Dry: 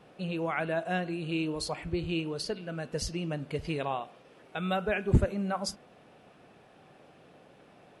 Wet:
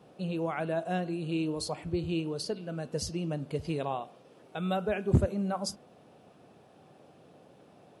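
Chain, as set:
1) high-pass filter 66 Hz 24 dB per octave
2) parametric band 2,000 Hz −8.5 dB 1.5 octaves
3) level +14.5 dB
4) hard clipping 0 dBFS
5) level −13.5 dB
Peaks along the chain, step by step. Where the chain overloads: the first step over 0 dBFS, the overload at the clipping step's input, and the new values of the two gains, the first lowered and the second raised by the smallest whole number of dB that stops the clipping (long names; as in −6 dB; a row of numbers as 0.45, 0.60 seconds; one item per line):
−10.5, −10.5, +4.0, 0.0, −13.5 dBFS
step 3, 4.0 dB
step 3 +10.5 dB, step 5 −9.5 dB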